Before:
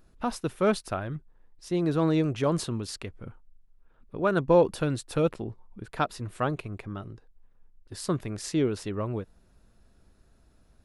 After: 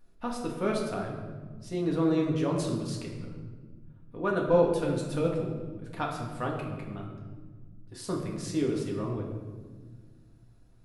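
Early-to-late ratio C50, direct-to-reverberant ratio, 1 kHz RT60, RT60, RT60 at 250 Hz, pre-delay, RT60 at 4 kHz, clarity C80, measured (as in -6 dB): 4.0 dB, -1.5 dB, 1.3 s, 1.6 s, 2.6 s, 4 ms, 0.90 s, 6.0 dB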